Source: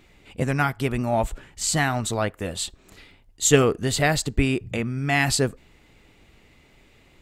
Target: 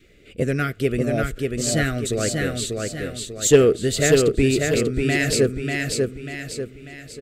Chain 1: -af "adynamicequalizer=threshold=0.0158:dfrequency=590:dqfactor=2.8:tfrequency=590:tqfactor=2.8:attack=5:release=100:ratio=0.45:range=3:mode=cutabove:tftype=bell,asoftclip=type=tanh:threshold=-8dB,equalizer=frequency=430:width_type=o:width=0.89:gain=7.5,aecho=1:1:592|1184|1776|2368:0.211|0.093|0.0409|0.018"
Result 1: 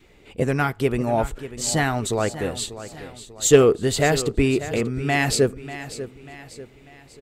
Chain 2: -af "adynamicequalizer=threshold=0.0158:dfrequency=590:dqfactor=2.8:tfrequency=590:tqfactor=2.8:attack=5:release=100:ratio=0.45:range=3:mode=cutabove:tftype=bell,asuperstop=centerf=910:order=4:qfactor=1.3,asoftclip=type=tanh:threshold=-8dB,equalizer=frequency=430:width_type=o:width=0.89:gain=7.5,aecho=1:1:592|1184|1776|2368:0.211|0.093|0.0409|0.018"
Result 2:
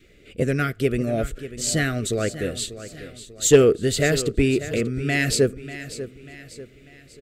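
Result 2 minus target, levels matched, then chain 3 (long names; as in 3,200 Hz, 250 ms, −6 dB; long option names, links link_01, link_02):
echo-to-direct −10 dB
-af "adynamicequalizer=threshold=0.0158:dfrequency=590:dqfactor=2.8:tfrequency=590:tqfactor=2.8:attack=5:release=100:ratio=0.45:range=3:mode=cutabove:tftype=bell,asuperstop=centerf=910:order=4:qfactor=1.3,asoftclip=type=tanh:threshold=-8dB,equalizer=frequency=430:width_type=o:width=0.89:gain=7.5,aecho=1:1:592|1184|1776|2368|2960|3552:0.668|0.294|0.129|0.0569|0.0251|0.011"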